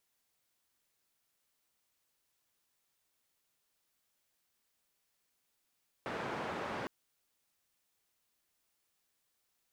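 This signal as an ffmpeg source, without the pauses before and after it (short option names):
-f lavfi -i "anoisesrc=c=white:d=0.81:r=44100:seed=1,highpass=f=120,lowpass=f=1200,volume=-22.1dB"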